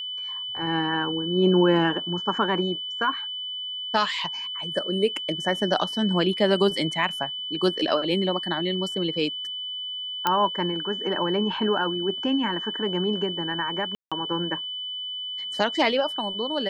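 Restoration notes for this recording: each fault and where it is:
whine 3 kHz -30 dBFS
10.27 s: pop -8 dBFS
13.95–14.12 s: dropout 166 ms

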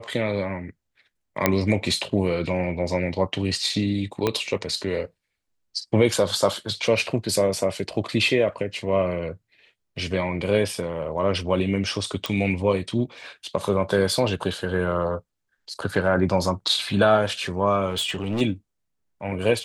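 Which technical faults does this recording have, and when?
1.46 s: pop -3 dBFS
4.27 s: pop -8 dBFS
12.26 s: pop
17.89–18.42 s: clipped -21.5 dBFS

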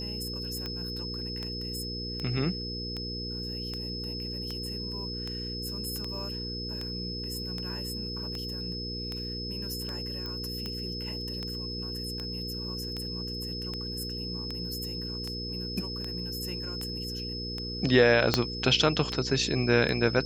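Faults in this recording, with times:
hum 60 Hz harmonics 8 -38 dBFS
tick 78 rpm -21 dBFS
whine 5.2 kHz -36 dBFS
10.26 s: pop -24 dBFS
18.34 s: pop -7 dBFS

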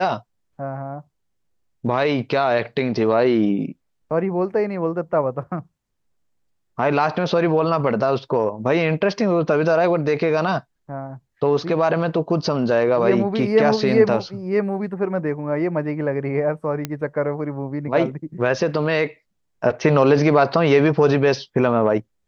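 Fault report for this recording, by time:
16.85 s: pop -10 dBFS

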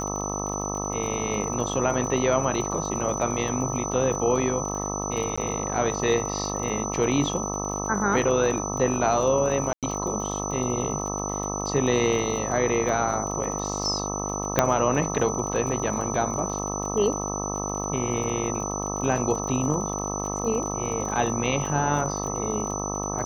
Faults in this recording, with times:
buzz 50 Hz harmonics 26 -31 dBFS
crackle 37 per s -32 dBFS
whine 6 kHz -32 dBFS
5.36–5.38 s: dropout 15 ms
9.73–9.83 s: dropout 97 ms
14.59 s: pop -3 dBFS

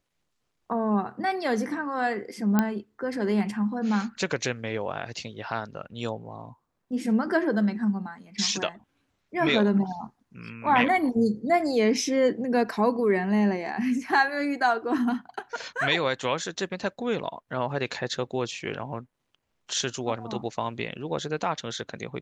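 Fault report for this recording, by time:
2.59 s: pop -9 dBFS

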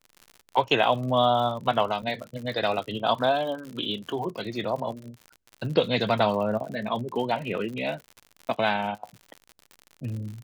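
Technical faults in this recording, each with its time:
crackle 78 per s -34 dBFS
2.02–2.03 s: dropout 6.6 ms

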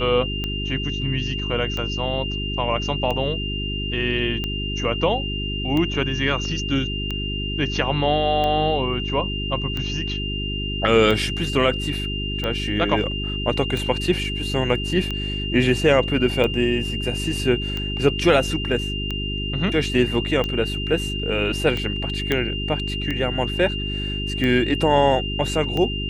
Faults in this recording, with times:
hum 50 Hz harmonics 8 -28 dBFS
tick 45 rpm -13 dBFS
whine 2.8 kHz -28 dBFS
22.32 s: pop -8 dBFS

